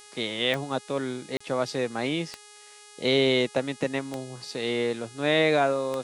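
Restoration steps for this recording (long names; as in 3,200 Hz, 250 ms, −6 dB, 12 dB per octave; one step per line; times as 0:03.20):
click removal
hum removal 416.3 Hz, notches 26
repair the gap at 0:01.37, 35 ms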